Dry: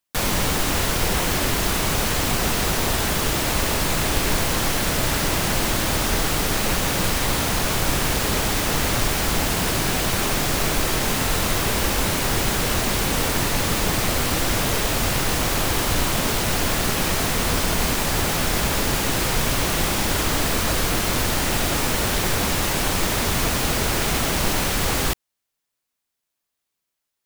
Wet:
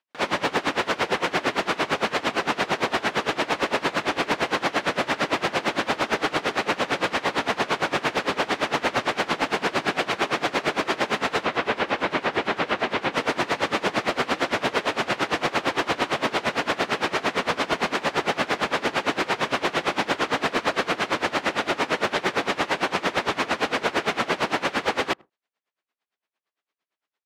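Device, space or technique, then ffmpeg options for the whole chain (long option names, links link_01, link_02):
helicopter radio: -filter_complex "[0:a]highpass=310,lowpass=2800,asplit=2[link_01][link_02];[link_02]adelay=81,lowpass=frequency=900:poles=1,volume=-19.5dB,asplit=2[link_03][link_04];[link_04]adelay=81,lowpass=frequency=900:poles=1,volume=0.22[link_05];[link_01][link_03][link_05]amix=inputs=3:normalize=0,aeval=exprs='val(0)*pow(10,-22*(0.5-0.5*cos(2*PI*8.8*n/s))/20)':channel_layout=same,asoftclip=type=hard:threshold=-22dB,asettb=1/sr,asplit=3[link_06][link_07][link_08];[link_06]atrim=end=11.434[link_09];[link_07]atrim=start=11.43:end=13.14,asetpts=PTS-STARTPTS,afade=type=in:duration=0.004:curve=qsin,afade=type=out:start_time=1.706:duration=0.004:curve=qsin,acrossover=split=4200[link_10][link_11];[link_11]acompressor=threshold=-57dB:ratio=4:attack=1:release=60[link_12];[link_10][link_12]amix=inputs=2:normalize=0[link_13];[link_08]atrim=start=13.136[link_14];[link_09][link_13]acrossfade=duration=0.004:curve1=hsin:curve2=qsin[link_15];[link_15][link_14]acrossfade=duration=0.004:curve1=qsin:curve2=hsin,volume=7.5dB"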